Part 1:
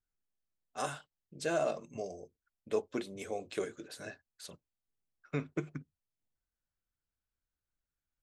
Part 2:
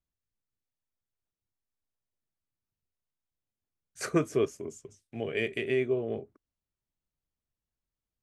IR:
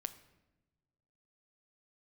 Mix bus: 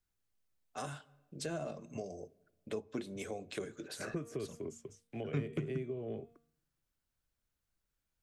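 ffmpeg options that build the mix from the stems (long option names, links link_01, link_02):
-filter_complex "[0:a]volume=1dB,asplit=2[link_01][link_02];[link_02]volume=-9dB[link_03];[1:a]bandreject=frequency=232.8:width_type=h:width=4,bandreject=frequency=465.6:width_type=h:width=4,bandreject=frequency=698.4:width_type=h:width=4,bandreject=frequency=931.2:width_type=h:width=4,bandreject=frequency=1164:width_type=h:width=4,bandreject=frequency=1396.8:width_type=h:width=4,bandreject=frequency=1629.6:width_type=h:width=4,bandreject=frequency=1862.4:width_type=h:width=4,bandreject=frequency=2095.2:width_type=h:width=4,bandreject=frequency=2328:width_type=h:width=4,bandreject=frequency=2560.8:width_type=h:width=4,bandreject=frequency=2793.6:width_type=h:width=4,bandreject=frequency=3026.4:width_type=h:width=4,bandreject=frequency=3259.2:width_type=h:width=4,bandreject=frequency=3492:width_type=h:width=4,bandreject=frequency=3724.8:width_type=h:width=4,acrossover=split=190|1500|3700[link_04][link_05][link_06][link_07];[link_04]acompressor=threshold=-46dB:ratio=4[link_08];[link_05]acompressor=threshold=-31dB:ratio=4[link_09];[link_06]acompressor=threshold=-53dB:ratio=4[link_10];[link_07]acompressor=threshold=-52dB:ratio=4[link_11];[link_08][link_09][link_10][link_11]amix=inputs=4:normalize=0,volume=-0.5dB[link_12];[2:a]atrim=start_sample=2205[link_13];[link_03][link_13]afir=irnorm=-1:irlink=0[link_14];[link_01][link_12][link_14]amix=inputs=3:normalize=0,acrossover=split=230[link_15][link_16];[link_16]acompressor=threshold=-40dB:ratio=6[link_17];[link_15][link_17]amix=inputs=2:normalize=0"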